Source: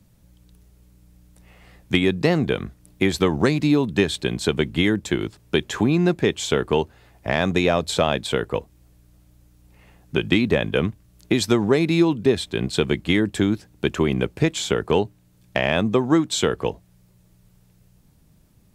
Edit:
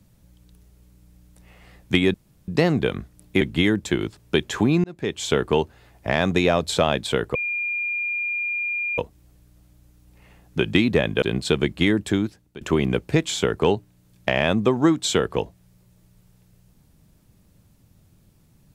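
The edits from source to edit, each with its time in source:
0:02.14: splice in room tone 0.34 s
0:03.07–0:04.61: remove
0:06.04–0:06.51: fade in
0:08.55: insert tone 2,410 Hz −23 dBFS 1.63 s
0:10.79–0:12.50: remove
0:13.14–0:13.89: fade out equal-power, to −23.5 dB

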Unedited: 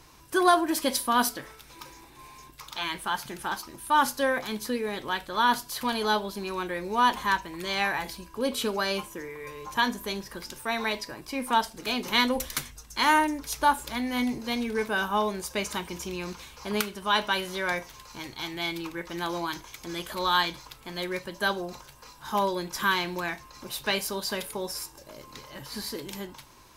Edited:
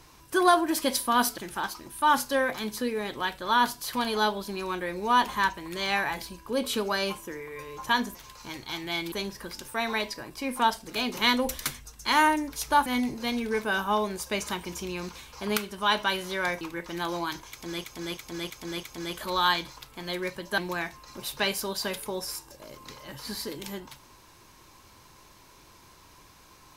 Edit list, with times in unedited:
0:01.38–0:03.26: remove
0:13.77–0:14.10: remove
0:17.85–0:18.82: move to 0:10.03
0:19.72–0:20.05: repeat, 5 plays
0:21.47–0:23.05: remove

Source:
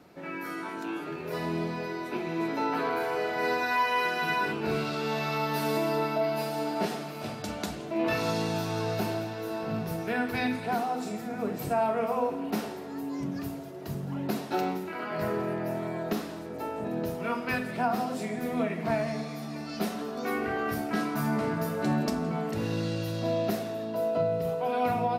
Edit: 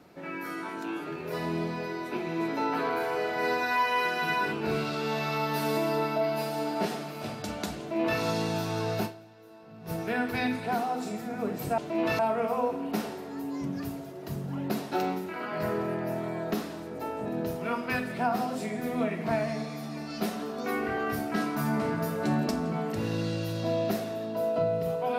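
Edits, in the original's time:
0:07.79–0:08.20: duplicate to 0:11.78
0:09.05–0:09.90: duck −17.5 dB, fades 0.35 s exponential

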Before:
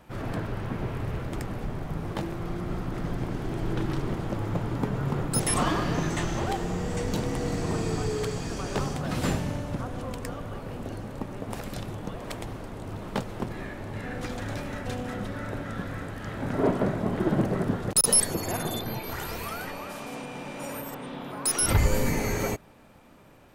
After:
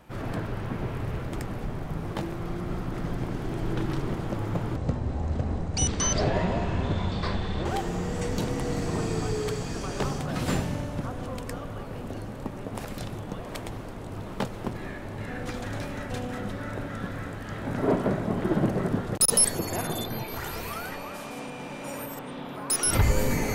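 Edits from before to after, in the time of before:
0:04.76–0:06.41: play speed 57%

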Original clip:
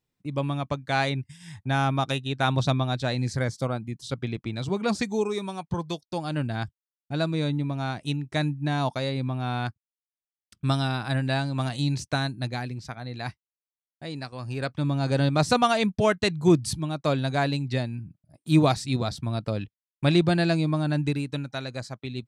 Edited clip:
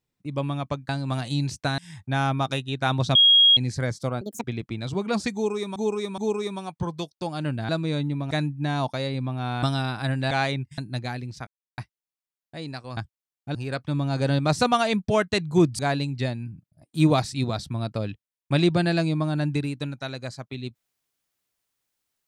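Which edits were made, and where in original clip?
0:00.89–0:01.36: swap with 0:11.37–0:12.26
0:02.73–0:03.15: beep over 3,280 Hz −12 dBFS
0:03.79–0:04.19: play speed 175%
0:05.09–0:05.51: repeat, 3 plays
0:06.60–0:07.18: move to 0:14.45
0:07.80–0:08.33: remove
0:09.65–0:10.69: remove
0:12.95–0:13.26: silence
0:16.69–0:17.31: remove

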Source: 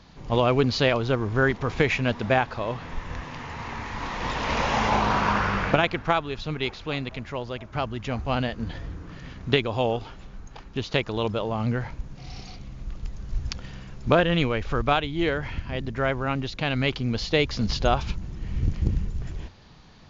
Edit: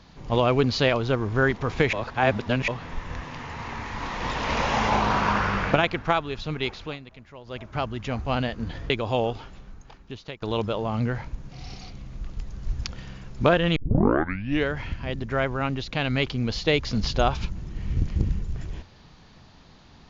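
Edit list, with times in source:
0:01.93–0:02.68: reverse
0:06.84–0:07.58: duck −12.5 dB, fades 0.14 s
0:08.90–0:09.56: remove
0:10.06–0:11.08: fade out, to −19 dB
0:14.42: tape start 0.90 s

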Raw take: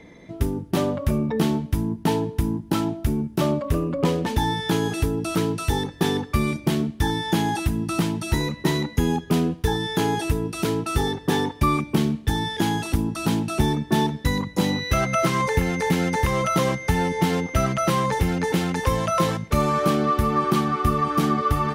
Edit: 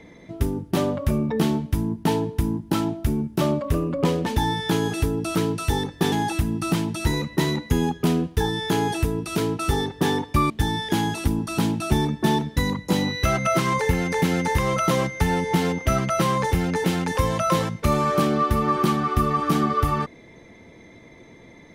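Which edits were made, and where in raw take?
0:06.12–0:07.39: remove
0:11.77–0:12.18: remove

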